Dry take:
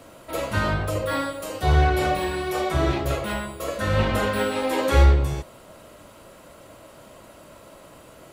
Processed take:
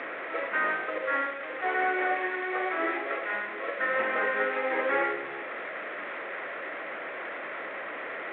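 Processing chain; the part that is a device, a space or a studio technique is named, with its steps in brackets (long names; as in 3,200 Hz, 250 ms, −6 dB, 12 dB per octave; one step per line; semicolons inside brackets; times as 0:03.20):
0:01.26–0:03.33: elliptic band-pass filter 270–6,800 Hz, stop band 40 dB
digital answering machine (band-pass filter 340–3,200 Hz; linear delta modulator 16 kbit/s, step −28 dBFS; loudspeaker in its box 410–3,500 Hz, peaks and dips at 610 Hz −6 dB, 950 Hz −8 dB, 1,900 Hz +7 dB, 2,900 Hz −9 dB)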